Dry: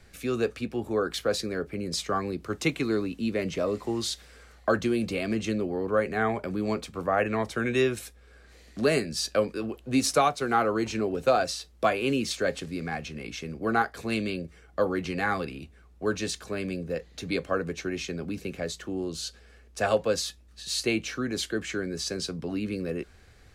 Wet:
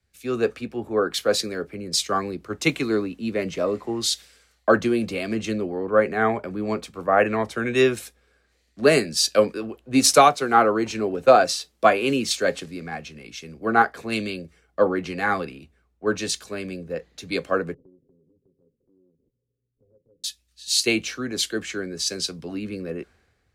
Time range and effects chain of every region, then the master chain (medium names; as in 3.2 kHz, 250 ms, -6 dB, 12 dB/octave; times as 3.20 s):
17.74–20.24 s: comb filter that takes the minimum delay 7.5 ms + steep low-pass 510 Hz 72 dB/octave + compression 4:1, threshold -49 dBFS
whole clip: high-pass 150 Hz 6 dB/octave; three bands expanded up and down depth 70%; trim +4.5 dB